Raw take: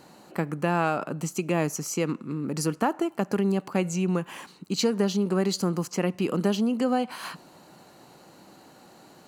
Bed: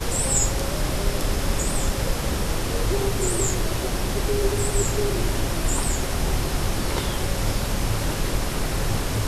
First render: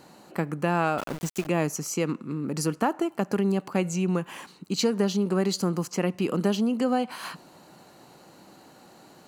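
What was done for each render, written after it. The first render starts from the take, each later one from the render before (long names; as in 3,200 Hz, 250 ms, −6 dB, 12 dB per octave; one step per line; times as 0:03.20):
0:00.98–0:01.47: centre clipping without the shift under −32.5 dBFS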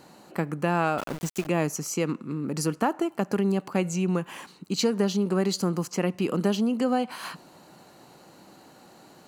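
no processing that can be heard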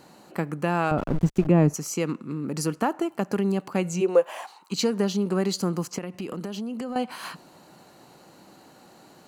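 0:00.91–0:01.74: spectral tilt −4 dB per octave
0:04.00–0:04.71: high-pass with resonance 410 Hz → 1,000 Hz, resonance Q 6.9
0:05.98–0:06.96: downward compressor, threshold −29 dBFS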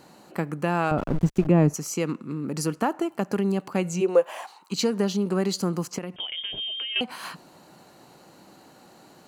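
0:06.16–0:07.01: voice inversion scrambler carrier 3,400 Hz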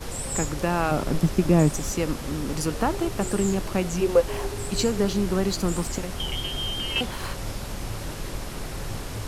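mix in bed −8.5 dB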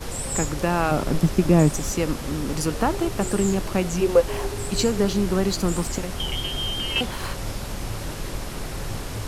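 level +2 dB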